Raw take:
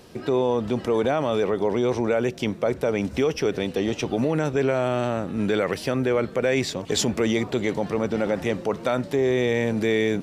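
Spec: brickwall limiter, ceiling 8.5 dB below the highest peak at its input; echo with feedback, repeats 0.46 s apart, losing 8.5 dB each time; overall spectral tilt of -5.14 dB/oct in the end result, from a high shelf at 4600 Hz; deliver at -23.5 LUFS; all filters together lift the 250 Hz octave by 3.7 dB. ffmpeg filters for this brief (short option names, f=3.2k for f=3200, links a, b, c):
-af "equalizer=f=250:t=o:g=4.5,highshelf=f=4.6k:g=8.5,alimiter=limit=-15.5dB:level=0:latency=1,aecho=1:1:460|920|1380|1840:0.376|0.143|0.0543|0.0206,volume=1.5dB"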